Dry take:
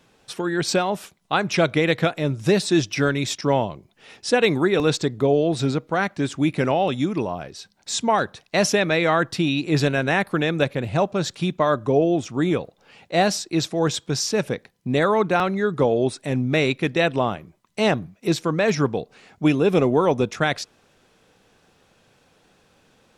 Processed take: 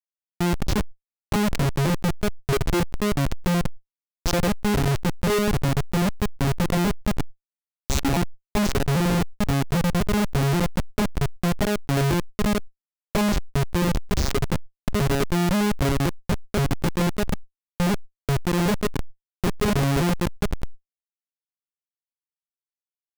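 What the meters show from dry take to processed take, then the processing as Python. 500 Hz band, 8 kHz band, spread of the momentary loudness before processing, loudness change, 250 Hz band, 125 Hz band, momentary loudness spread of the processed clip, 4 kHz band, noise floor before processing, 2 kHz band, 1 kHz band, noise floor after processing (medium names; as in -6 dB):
-6.5 dB, -2.0 dB, 8 LU, -2.5 dB, -1.0 dB, +2.5 dB, 7 LU, -4.0 dB, -61 dBFS, -5.5 dB, -4.5 dB, under -85 dBFS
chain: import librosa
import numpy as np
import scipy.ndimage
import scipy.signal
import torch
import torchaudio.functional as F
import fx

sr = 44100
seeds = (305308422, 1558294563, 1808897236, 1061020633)

y = fx.vocoder_arp(x, sr, chord='major triad', root=49, every_ms=263)
y = fx.recorder_agc(y, sr, target_db=-15.5, rise_db_per_s=9.3, max_gain_db=30)
y = fx.bass_treble(y, sr, bass_db=1, treble_db=12)
y = fx.schmitt(y, sr, flips_db=-19.0)
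y = fx.sustainer(y, sr, db_per_s=110.0)
y = y * librosa.db_to_amplitude(2.5)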